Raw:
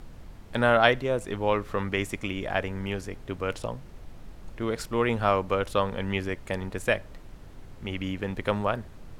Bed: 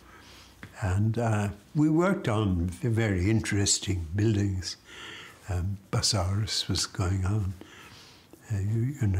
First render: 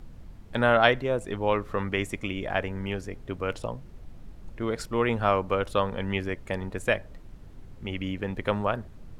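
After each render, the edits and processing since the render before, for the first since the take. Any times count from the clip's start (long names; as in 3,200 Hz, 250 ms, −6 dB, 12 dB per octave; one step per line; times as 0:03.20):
broadband denoise 6 dB, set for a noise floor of −46 dBFS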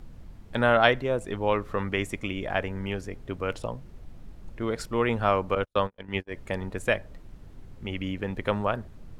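0:05.55–0:06.34: noise gate −29 dBFS, range −46 dB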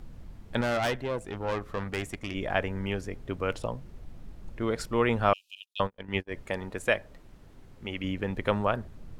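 0:00.61–0:02.35: tube saturation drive 24 dB, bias 0.65
0:05.33–0:05.80: Chebyshev high-pass filter 2,500 Hz, order 10
0:06.42–0:08.04: low-shelf EQ 210 Hz −7.5 dB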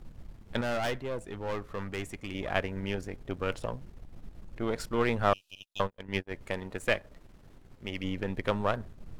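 gain on one half-wave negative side −7 dB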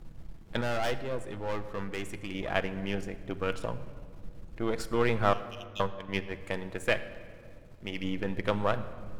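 rectangular room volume 3,200 cubic metres, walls mixed, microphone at 0.66 metres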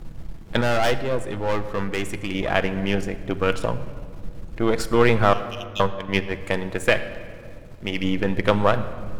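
level +10 dB
brickwall limiter −3 dBFS, peak gain reduction 3 dB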